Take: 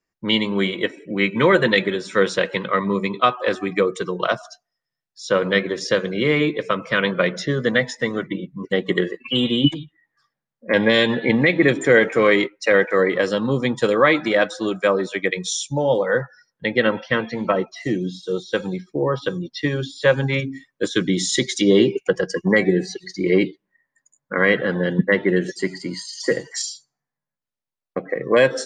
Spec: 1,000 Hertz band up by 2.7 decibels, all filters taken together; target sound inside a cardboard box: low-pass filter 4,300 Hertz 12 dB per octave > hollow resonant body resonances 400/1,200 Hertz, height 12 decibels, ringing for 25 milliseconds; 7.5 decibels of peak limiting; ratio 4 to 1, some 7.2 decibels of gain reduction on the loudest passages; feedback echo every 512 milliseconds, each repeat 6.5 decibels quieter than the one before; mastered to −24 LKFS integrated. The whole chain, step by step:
parametric band 1,000 Hz +3.5 dB
downward compressor 4 to 1, threshold −18 dBFS
brickwall limiter −12.5 dBFS
low-pass filter 4,300 Hz 12 dB per octave
repeating echo 512 ms, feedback 47%, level −6.5 dB
hollow resonant body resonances 400/1,200 Hz, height 12 dB, ringing for 25 ms
level −5.5 dB

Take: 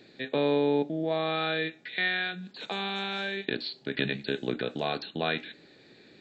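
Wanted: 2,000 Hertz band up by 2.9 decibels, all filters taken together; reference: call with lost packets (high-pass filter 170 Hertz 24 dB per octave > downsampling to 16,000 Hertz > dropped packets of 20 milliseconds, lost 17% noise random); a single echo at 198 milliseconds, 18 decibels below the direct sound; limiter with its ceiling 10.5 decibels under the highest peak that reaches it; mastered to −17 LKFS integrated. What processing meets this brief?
parametric band 2,000 Hz +3.5 dB
brickwall limiter −23 dBFS
high-pass filter 170 Hz 24 dB per octave
single-tap delay 198 ms −18 dB
downsampling to 16,000 Hz
dropped packets of 20 ms, lost 17% noise random
level +17 dB

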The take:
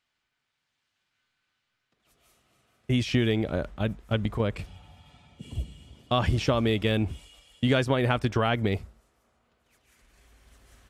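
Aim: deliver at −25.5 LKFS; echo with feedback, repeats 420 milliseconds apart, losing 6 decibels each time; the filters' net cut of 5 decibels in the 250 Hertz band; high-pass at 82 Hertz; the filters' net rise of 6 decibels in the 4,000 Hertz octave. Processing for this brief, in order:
high-pass filter 82 Hz
parametric band 250 Hz −6 dB
parametric band 4,000 Hz +8 dB
repeating echo 420 ms, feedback 50%, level −6 dB
level +1.5 dB

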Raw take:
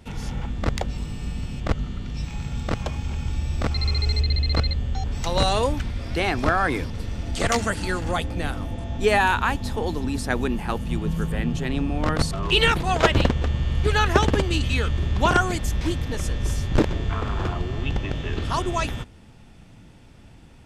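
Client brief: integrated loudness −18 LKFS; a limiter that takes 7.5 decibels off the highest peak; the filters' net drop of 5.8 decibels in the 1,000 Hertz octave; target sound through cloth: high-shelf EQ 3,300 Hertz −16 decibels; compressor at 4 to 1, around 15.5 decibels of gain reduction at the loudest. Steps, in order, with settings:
parametric band 1,000 Hz −6 dB
downward compressor 4 to 1, threshold −34 dBFS
brickwall limiter −26.5 dBFS
high-shelf EQ 3,300 Hz −16 dB
level +20.5 dB

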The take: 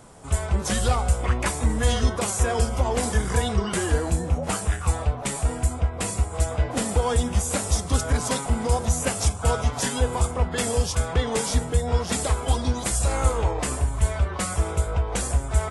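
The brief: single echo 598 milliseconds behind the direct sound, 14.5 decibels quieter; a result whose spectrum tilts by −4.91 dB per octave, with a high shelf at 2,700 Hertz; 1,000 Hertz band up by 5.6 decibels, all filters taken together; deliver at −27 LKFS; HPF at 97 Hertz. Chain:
high-pass filter 97 Hz
parametric band 1,000 Hz +8 dB
high-shelf EQ 2,700 Hz −6.5 dB
single-tap delay 598 ms −14.5 dB
level −1.5 dB

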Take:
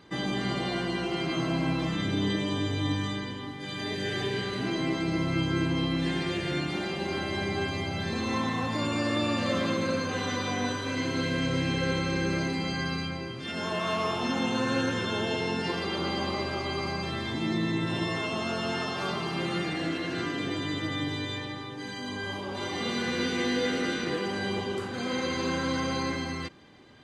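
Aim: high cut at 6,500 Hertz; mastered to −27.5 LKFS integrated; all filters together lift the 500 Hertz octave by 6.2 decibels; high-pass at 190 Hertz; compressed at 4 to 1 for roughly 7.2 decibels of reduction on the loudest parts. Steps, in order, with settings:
high-pass filter 190 Hz
low-pass filter 6,500 Hz
parametric band 500 Hz +8 dB
downward compressor 4 to 1, threshold −28 dBFS
level +4 dB

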